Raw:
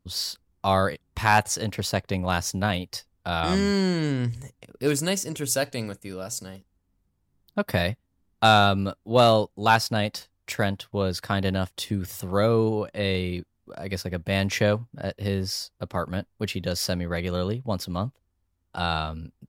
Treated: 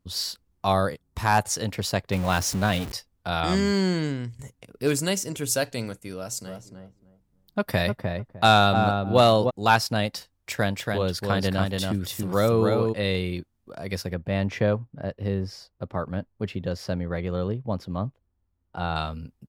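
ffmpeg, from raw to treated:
-filter_complex "[0:a]asettb=1/sr,asplit=3[a][b][c];[a]atrim=end=0.724[d];[b]atrim=start=0.72:end=1.45,asetpts=PTS-STARTPTS,afade=t=in:d=0.004:c=qsin,afade=t=out:st=0.726:d=0.004:c=qsin,equalizer=f=2.5k:w=0.87:g=-6.5[e];[c]atrim=start=1.446[f];[d][e]acrossfade=d=0.004:c1=hsin:c2=qsin[g];[g][f]acrossfade=d=0.004:c1=qsin:c2=hsin,asettb=1/sr,asplit=3[h][i][j];[h]atrim=end=2.124[k];[i]atrim=start=2.12:end=2.92,asetpts=PTS-STARTPTS,afade=t=in:d=0.004:c=qsin,afade=t=out:st=0.796:d=0.004:c=qsin,aeval=exprs='val(0)+0.5*0.0335*sgn(val(0))':c=same[l];[j]atrim=start=2.916[m];[k][l]acrossfade=d=0.004:c1=hsin:c2=qsin[n];[n][m]acrossfade=d=0.004:c1=qsin:c2=hsin,asplit=3[o][p][q];[o]afade=t=out:st=6.46:d=0.02[r];[p]asplit=2[s][t];[t]adelay=303,lowpass=f=1k:p=1,volume=-3.5dB,asplit=2[u][v];[v]adelay=303,lowpass=f=1k:p=1,volume=0.21,asplit=2[w][x];[x]adelay=303,lowpass=f=1k:p=1,volume=0.21[y];[s][u][w][y]amix=inputs=4:normalize=0,afade=t=in:st=6.46:d=0.02,afade=t=out:st=9.49:d=0.02[z];[q]afade=t=in:st=9.49:d=0.02[aa];[r][z][aa]amix=inputs=3:normalize=0,asplit=3[ab][ac][ad];[ab]afade=t=out:st=10.58:d=0.02[ae];[ac]aecho=1:1:282:0.668,afade=t=in:st=10.58:d=0.02,afade=t=out:st=12.92:d=0.02[af];[ad]afade=t=in:st=12.92:d=0.02[ag];[ae][af][ag]amix=inputs=3:normalize=0,asettb=1/sr,asplit=3[ah][ai][aj];[ah]atrim=end=14.144[ak];[ai]atrim=start=14.14:end=18.96,asetpts=PTS-STARTPTS,afade=t=in:d=0.004:c=qsin,afade=t=out:st=4.816:d=0.004:c=qsin,lowpass=f=1.2k:p=1[al];[aj]atrim=start=18.956[am];[ak][al]acrossfade=d=0.004:c1=hsin:c2=qsin[an];[an][am]acrossfade=d=0.004:c1=qsin:c2=hsin,asplit=2[ao][ap];[ao]atrim=end=4.39,asetpts=PTS-STARTPTS,afade=t=out:st=3.96:d=0.43:silence=0.188365[aq];[ap]atrim=start=4.39,asetpts=PTS-STARTPTS,afade=t=in:d=0.004:c=hsin:silence=0.188365[ar];[aq][ar]concat=n=2:v=0:a=1"

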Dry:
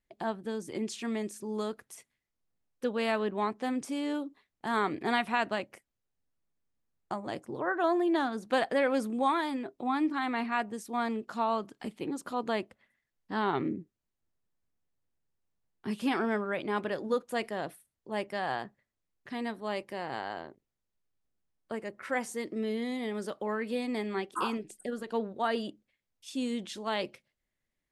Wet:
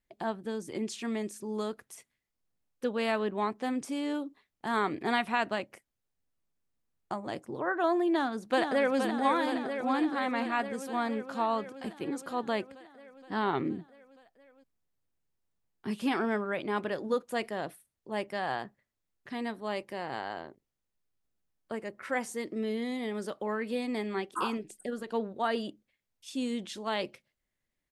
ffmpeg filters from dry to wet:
-filter_complex "[0:a]asplit=2[a][b];[b]afade=t=in:st=8.1:d=0.01,afade=t=out:st=8.99:d=0.01,aecho=0:1:470|940|1410|1880|2350|2820|3290|3760|4230|4700|5170|5640:0.501187|0.37589|0.281918|0.211438|0.158579|0.118934|0.0892006|0.0669004|0.0501753|0.0376315|0.0282236|0.0211677[c];[a][c]amix=inputs=2:normalize=0"

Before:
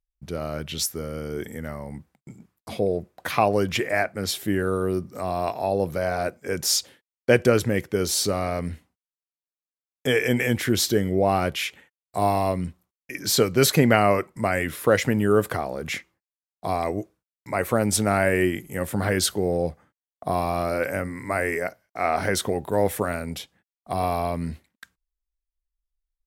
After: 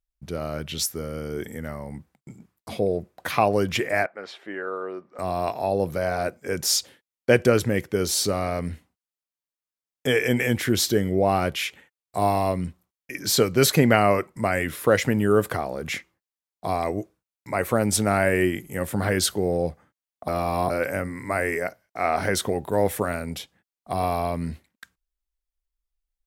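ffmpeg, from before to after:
-filter_complex "[0:a]asettb=1/sr,asplit=3[a][b][c];[a]atrim=end=4.064[d];[b]atrim=start=4.06:end=5.19,asetpts=PTS-STARTPTS,afade=t=in:d=0.004:c=qsin,afade=t=out:st=1.126:d=0.004:c=qsin,highpass=590,lowpass=2k[e];[c]atrim=start=5.186[f];[d][e]acrossfade=d=0.004:c1=hsin:c2=qsin[g];[g][f]acrossfade=d=0.004:c1=qsin:c2=hsin,asplit=3[h][i][j];[h]atrim=end=20.282[k];[i]atrim=start=20.278:end=20.702,asetpts=PTS-STARTPTS,areverse[l];[j]atrim=start=20.698[m];[k][l]acrossfade=d=0.004:c1=hsin:c2=hsin[n];[n][m]acrossfade=d=0.004:c1=hsin:c2=hsin"

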